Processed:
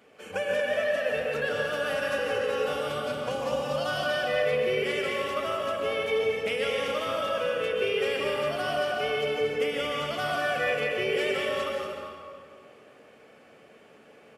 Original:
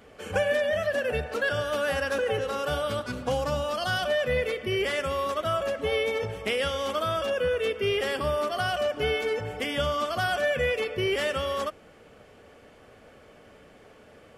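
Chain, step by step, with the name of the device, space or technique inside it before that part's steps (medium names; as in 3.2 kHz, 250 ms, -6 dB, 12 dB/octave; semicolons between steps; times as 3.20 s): stadium PA (high-pass 170 Hz 12 dB/octave; peaking EQ 2.5 kHz +5 dB 0.28 oct; loudspeakers at several distances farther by 59 m -9 dB, 80 m -9 dB; reverberation RT60 2.1 s, pre-delay 117 ms, DRR -0.5 dB); trim -5.5 dB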